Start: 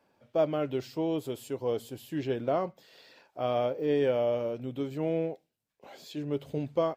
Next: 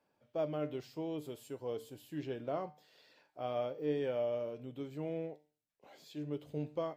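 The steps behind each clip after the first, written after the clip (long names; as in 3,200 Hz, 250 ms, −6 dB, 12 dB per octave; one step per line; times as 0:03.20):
tuned comb filter 150 Hz, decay 0.41 s, harmonics all, mix 60%
level −2.5 dB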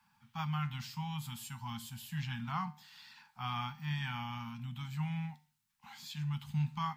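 Chebyshev band-stop filter 230–820 Hz, order 5
level +10.5 dB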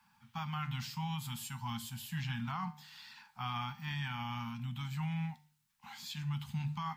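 mains-hum notches 50/100/150 Hz
brickwall limiter −32 dBFS, peak gain reduction 8 dB
level +2.5 dB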